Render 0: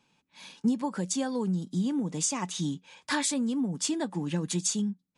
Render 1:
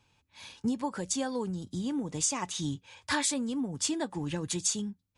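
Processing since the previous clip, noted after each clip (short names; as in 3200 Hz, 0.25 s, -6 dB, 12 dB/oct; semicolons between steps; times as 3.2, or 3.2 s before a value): resonant low shelf 130 Hz +10.5 dB, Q 3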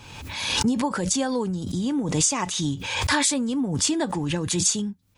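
backwards sustainer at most 41 dB/s; gain +7 dB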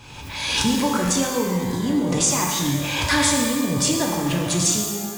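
shimmer reverb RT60 1.5 s, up +12 st, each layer -8 dB, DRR 0 dB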